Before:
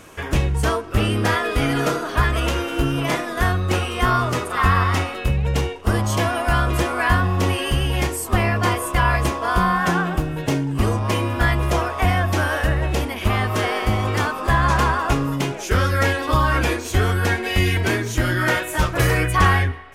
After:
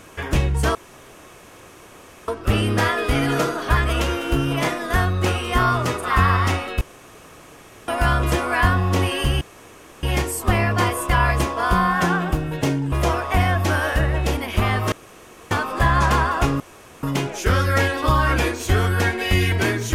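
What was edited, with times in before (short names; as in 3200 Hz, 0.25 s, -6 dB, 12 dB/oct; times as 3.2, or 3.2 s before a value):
0.75 insert room tone 1.53 s
5.28–6.35 room tone
7.88 insert room tone 0.62 s
10.77–11.6 cut
13.6–14.19 room tone
15.28 insert room tone 0.43 s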